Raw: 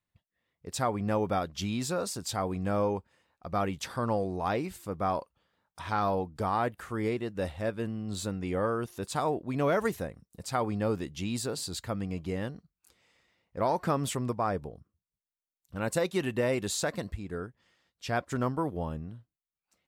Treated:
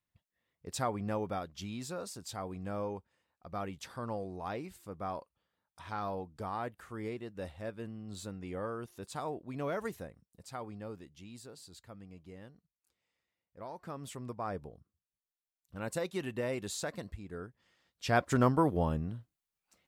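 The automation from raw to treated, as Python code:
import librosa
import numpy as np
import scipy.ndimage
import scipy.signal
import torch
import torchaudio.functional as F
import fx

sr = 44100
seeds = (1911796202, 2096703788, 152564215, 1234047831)

y = fx.gain(x, sr, db=fx.line((0.69, -3.0), (1.53, -9.0), (10.01, -9.0), (11.25, -17.0), (13.75, -17.0), (14.55, -7.0), (17.33, -7.0), (18.26, 3.5)))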